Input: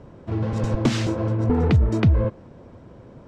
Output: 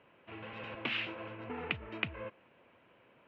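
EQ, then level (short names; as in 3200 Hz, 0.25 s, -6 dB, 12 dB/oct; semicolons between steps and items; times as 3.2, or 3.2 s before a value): band-pass 2700 Hz, Q 4.2; air absorption 500 m; +10.5 dB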